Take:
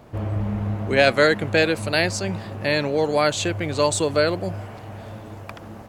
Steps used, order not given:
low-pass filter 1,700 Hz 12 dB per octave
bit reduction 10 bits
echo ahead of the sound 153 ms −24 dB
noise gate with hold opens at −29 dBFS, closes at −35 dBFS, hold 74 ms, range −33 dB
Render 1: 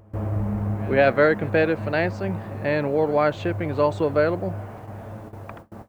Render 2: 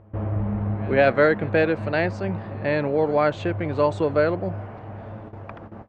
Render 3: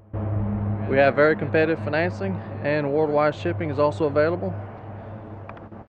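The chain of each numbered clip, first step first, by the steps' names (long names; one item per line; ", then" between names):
low-pass filter, then bit reduction, then noise gate with hold, then echo ahead of the sound
bit reduction, then noise gate with hold, then echo ahead of the sound, then low-pass filter
noise gate with hold, then bit reduction, then low-pass filter, then echo ahead of the sound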